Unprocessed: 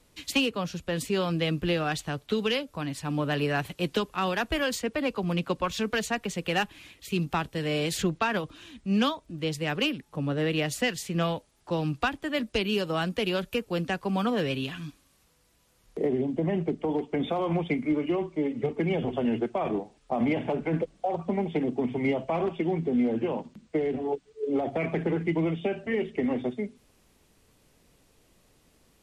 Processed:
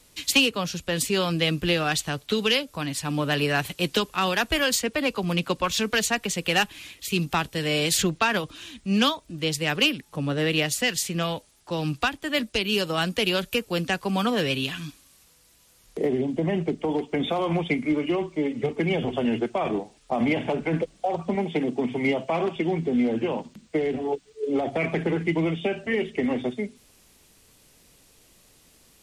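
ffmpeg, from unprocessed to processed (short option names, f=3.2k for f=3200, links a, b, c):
-filter_complex "[0:a]asettb=1/sr,asplit=3[a][b][c];[a]atrim=end=10.564[d];[b]atrim=start=10.56:end=12.98,asetpts=PTS-STARTPTS,afade=t=in:d=0.004:c=qsin,afade=t=out:st=2.416:d=0.004:c=qsin,tremolo=f=2.2:d=0.3[e];[c]atrim=start=12.976[f];[d][e]acrossfade=d=0.004:c1=hsin:c2=qsin[g];[g][f]acrossfade=d=0.004:c1=qsin:c2=hsin,asettb=1/sr,asplit=3[h][i][j];[h]atrim=end=21.354[k];[i]atrim=start=21.35:end=22.56,asetpts=PTS-STARTPTS,afade=t=in:d=0.004:c=qsin,afade=t=out:st=1.206:d=0.004:c=qsin,highpass=120[l];[j]atrim=start=22.556[m];[k][l]acrossfade=d=0.004:c1=hsin:c2=qsin[n];[n][m]acrossfade=d=0.004:c1=qsin:c2=hsin,highshelf=f=2.4k:g=9.5,volume=2dB"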